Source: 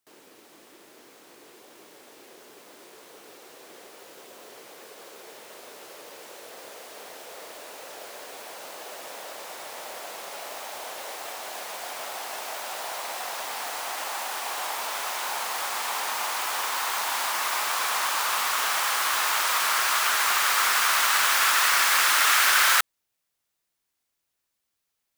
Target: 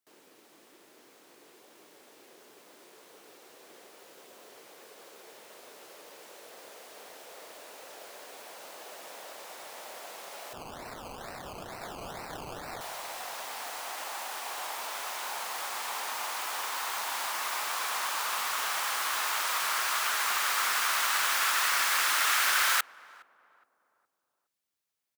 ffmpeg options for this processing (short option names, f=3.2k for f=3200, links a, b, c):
-filter_complex "[0:a]highpass=89,asettb=1/sr,asplit=3[a][b][c];[a]atrim=end=10.534[d];[b]atrim=start=10.53:end=12.81,asetpts=PTS-STARTPTS,afade=t=in:d=0.004:c=qsin,afade=t=out:st=2.276:d=0.004:c=qsin,acrusher=samples=19:mix=1:aa=0.000001:lfo=1:lforange=11.4:lforate=2.2[e];[c]atrim=start=12.806[f];[d][e]acrossfade=d=0.004:c1=hsin:c2=qsin[g];[g][f]acrossfade=d=0.004:c1=qsin:c2=hsin,asplit=2[h][i];[i]adelay=415,lowpass=f=870:p=1,volume=-19dB,asplit=2[j][k];[k]adelay=415,lowpass=f=870:p=1,volume=0.51,asplit=2[l][m];[m]adelay=415,lowpass=f=870:p=1,volume=0.51,asplit=2[n][o];[o]adelay=415,lowpass=f=870:p=1,volume=0.51[p];[h][j][l][n][p]amix=inputs=5:normalize=0,volume=-6dB"